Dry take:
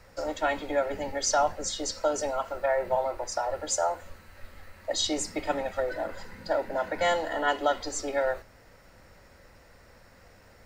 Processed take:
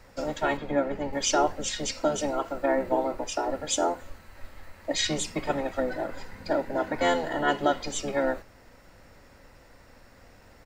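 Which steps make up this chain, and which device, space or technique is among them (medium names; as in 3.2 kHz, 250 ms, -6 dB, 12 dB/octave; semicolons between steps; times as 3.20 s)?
octave pedal (harmony voices -12 st -5 dB); 0.57–1.13 s: treble shelf 4 kHz -11 dB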